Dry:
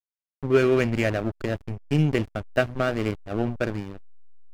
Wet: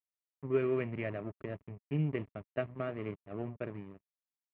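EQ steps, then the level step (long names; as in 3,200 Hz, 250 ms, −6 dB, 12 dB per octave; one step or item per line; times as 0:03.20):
high-frequency loss of the air 89 metres
loudspeaker in its box 190–2,500 Hz, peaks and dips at 230 Hz −8 dB, 330 Hz −6 dB, 510 Hz −7 dB, 790 Hz −9 dB, 1,500 Hz −10 dB
spectral tilt −1.5 dB per octave
−8.0 dB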